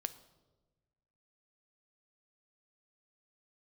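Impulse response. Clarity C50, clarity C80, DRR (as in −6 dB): 15.0 dB, 17.0 dB, 11.5 dB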